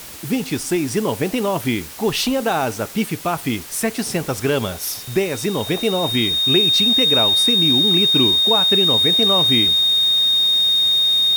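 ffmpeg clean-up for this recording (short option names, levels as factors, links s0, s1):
-af "bandreject=f=3700:w=30,afwtdn=0.016"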